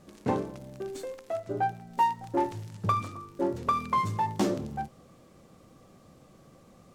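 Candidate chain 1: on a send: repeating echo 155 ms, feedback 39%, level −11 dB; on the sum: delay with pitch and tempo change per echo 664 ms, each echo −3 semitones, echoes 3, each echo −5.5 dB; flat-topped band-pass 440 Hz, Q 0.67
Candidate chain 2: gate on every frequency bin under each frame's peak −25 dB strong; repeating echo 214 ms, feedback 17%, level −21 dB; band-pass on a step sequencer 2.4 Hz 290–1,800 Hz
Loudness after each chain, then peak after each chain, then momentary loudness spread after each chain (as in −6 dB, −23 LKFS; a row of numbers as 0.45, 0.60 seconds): −33.0, −39.0 LKFS; −16.5, −21.5 dBFS; 10, 15 LU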